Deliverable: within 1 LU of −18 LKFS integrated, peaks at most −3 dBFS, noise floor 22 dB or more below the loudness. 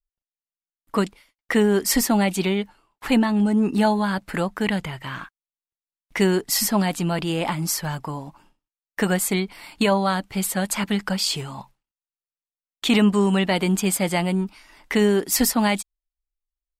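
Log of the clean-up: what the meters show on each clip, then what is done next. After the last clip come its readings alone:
integrated loudness −22.0 LKFS; sample peak −8.0 dBFS; target loudness −18.0 LKFS
→ level +4 dB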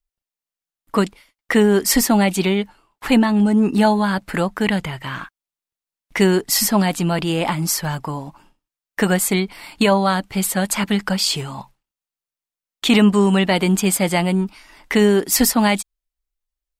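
integrated loudness −18.0 LKFS; sample peak −4.0 dBFS; background noise floor −91 dBFS

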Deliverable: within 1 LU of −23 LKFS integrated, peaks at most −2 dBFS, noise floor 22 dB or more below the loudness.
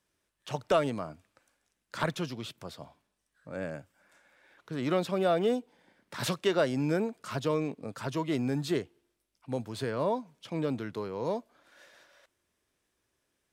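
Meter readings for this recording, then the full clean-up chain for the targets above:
integrated loudness −32.0 LKFS; sample peak −15.0 dBFS; target loudness −23.0 LKFS
→ level +9 dB

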